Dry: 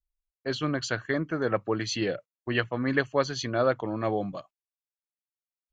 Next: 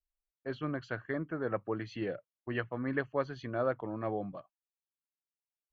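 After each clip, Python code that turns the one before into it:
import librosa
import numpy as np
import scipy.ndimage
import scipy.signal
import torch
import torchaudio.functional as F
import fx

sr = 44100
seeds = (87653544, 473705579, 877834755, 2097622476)

y = scipy.signal.sosfilt(scipy.signal.butter(2, 2000.0, 'lowpass', fs=sr, output='sos'), x)
y = y * librosa.db_to_amplitude(-7.0)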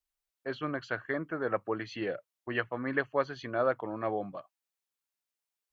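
y = fx.low_shelf(x, sr, hz=290.0, db=-10.5)
y = y * librosa.db_to_amplitude(5.5)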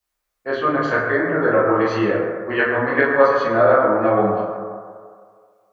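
y = fx.rev_fdn(x, sr, rt60_s=2.0, lf_ratio=0.75, hf_ratio=0.3, size_ms=87.0, drr_db=-9.5)
y = y * librosa.db_to_amplitude(5.5)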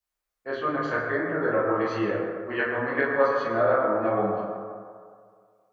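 y = fx.rev_freeverb(x, sr, rt60_s=1.7, hf_ratio=0.45, predelay_ms=85, drr_db=13.0)
y = y * librosa.db_to_amplitude(-8.0)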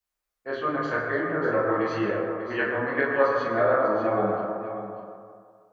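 y = x + 10.0 ** (-10.5 / 20.0) * np.pad(x, (int(593 * sr / 1000.0), 0))[:len(x)]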